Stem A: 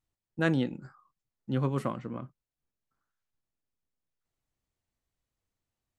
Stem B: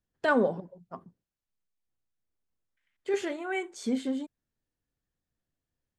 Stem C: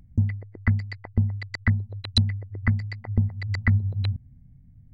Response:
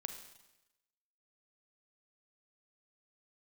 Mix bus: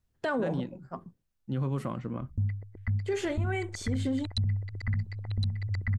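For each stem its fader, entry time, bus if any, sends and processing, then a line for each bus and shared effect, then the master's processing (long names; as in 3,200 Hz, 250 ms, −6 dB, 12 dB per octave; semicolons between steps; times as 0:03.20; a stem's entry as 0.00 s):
0.0 dB, 0.00 s, no send, no echo send, automatic ducking −9 dB, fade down 0.70 s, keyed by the second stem
+2.0 dB, 0.00 s, no send, no echo send, no processing
−9.5 dB, 2.20 s, no send, echo send −3 dB, no processing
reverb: not used
echo: single-tap delay 1,063 ms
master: low-shelf EQ 110 Hz +12 dB; brickwall limiter −22 dBFS, peak gain reduction 12.5 dB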